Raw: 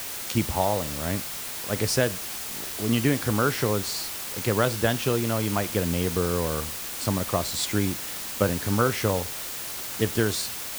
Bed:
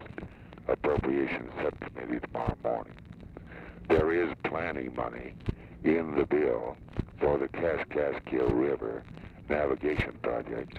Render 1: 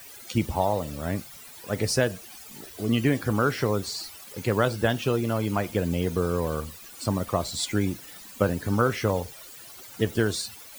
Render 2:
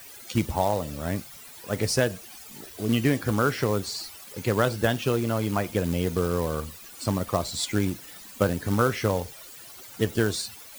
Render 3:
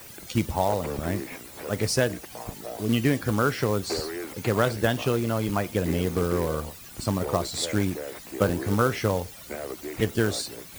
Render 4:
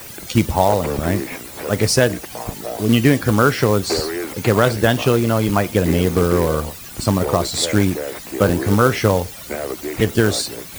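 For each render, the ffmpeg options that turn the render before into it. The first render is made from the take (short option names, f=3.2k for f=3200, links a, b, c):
-af "afftdn=nr=15:nf=-35"
-af "acrusher=bits=4:mode=log:mix=0:aa=0.000001"
-filter_complex "[1:a]volume=-7dB[a];[0:a][a]amix=inputs=2:normalize=0"
-af "volume=9dB,alimiter=limit=-1dB:level=0:latency=1"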